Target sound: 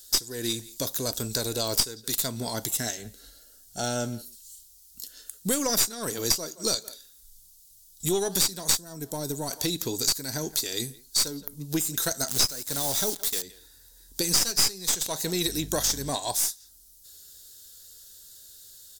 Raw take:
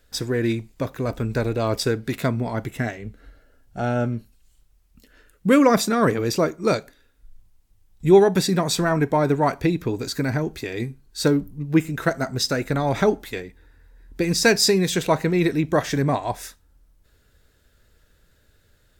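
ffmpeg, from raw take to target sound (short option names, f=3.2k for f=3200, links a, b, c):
-filter_complex "[0:a]lowshelf=f=190:g=-7,asettb=1/sr,asplit=3[a][b][c];[a]atrim=end=12.284[d];[b]atrim=start=12.28:end=13.42,asetpts=PTS-STARTPTS,afade=t=in:d=0.004:c=qsin,afade=t=out:st=1.136:d=0.004:c=qsin,acrusher=bits=7:dc=4:mix=0:aa=0.000001[e];[c]atrim=start=13.416[f];[d][e]acrossfade=d=0.004:c1=hsin:c2=qsin[g];[g][f]acrossfade=d=0.004:c1=qsin:c2=hsin,bandreject=f=1.2k:w=12,asplit=2[h][i];[i]adelay=170,highpass=300,lowpass=3.4k,asoftclip=type=hard:threshold=-13dB,volume=-22dB[j];[h][j]amix=inputs=2:normalize=0,aexciter=amount=11.3:drive=7.5:freq=3.6k,aeval=exprs='4.73*(cos(1*acos(clip(val(0)/4.73,-1,1)))-cos(1*PI/2))+1.19*(cos(4*acos(clip(val(0)/4.73,-1,1)))-cos(4*PI/2))+0.133*(cos(7*acos(clip(val(0)/4.73,-1,1)))-cos(7*PI/2))':c=same,acompressor=threshold=-22dB:ratio=4,asettb=1/sr,asplit=3[k][l][m];[k]atrim=end=8.774[n];[l]atrim=start=8.77:end=9.51,asetpts=PTS-STARTPTS,afade=t=in:d=0.004:c=qsin,afade=t=out:st=0.736:d=0.004:c=qsin,equalizer=f=1.7k:w=0.34:g=-10.5[o];[m]atrim=start=9.506[p];[n][o]acrossfade=d=0.004:c1=hsin:c2=qsin[q];[q][p]acrossfade=d=0.004:c1=qsin:c2=hsin,asettb=1/sr,asplit=3[r][s][t];[r]atrim=end=15.464[u];[s]atrim=start=15.46:end=16.1,asetpts=PTS-STARTPTS,afade=t=in:d=0.004:c=qsin,afade=t=out:st=0.636:d=0.004:c=qsin,aeval=exprs='val(0)+0.0126*(sin(2*PI*50*n/s)+sin(2*PI*2*50*n/s)/2+sin(2*PI*3*50*n/s)/3+sin(2*PI*4*50*n/s)/4+sin(2*PI*5*50*n/s)/5)':c=same[v];[t]atrim=start=16.096[w];[u][v]acrossfade=d=0.004:c1=hsin:c2=qsin[x];[x][w]acrossfade=d=0.004:c1=qsin:c2=hsin,volume=-2dB"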